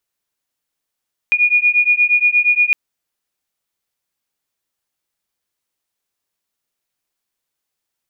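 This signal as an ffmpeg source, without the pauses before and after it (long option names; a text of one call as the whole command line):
ffmpeg -f lavfi -i "aevalsrc='0.2*(sin(2*PI*2440*t)+sin(2*PI*2448.5*t))':duration=1.41:sample_rate=44100" out.wav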